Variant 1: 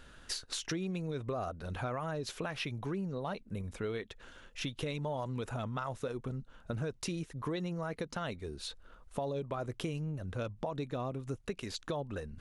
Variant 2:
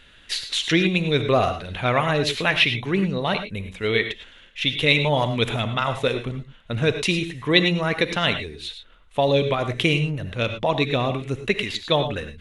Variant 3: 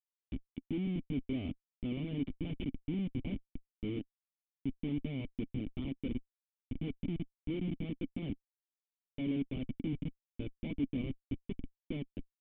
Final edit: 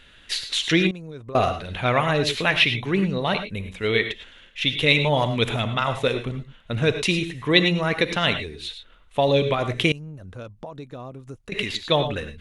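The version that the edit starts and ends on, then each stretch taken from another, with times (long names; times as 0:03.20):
2
0:00.91–0:01.35: punch in from 1
0:09.92–0:11.52: punch in from 1
not used: 3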